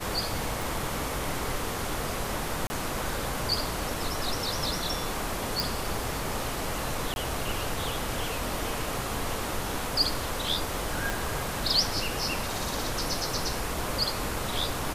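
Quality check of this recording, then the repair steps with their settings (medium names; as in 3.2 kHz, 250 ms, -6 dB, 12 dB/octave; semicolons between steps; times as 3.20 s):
0.62 s: pop
2.67–2.70 s: dropout 30 ms
5.60 s: pop
7.14–7.16 s: dropout 21 ms
11.10 s: pop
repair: de-click; interpolate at 2.67 s, 30 ms; interpolate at 7.14 s, 21 ms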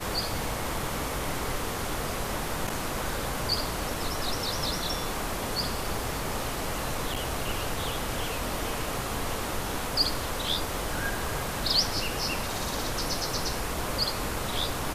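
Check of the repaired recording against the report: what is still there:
11.10 s: pop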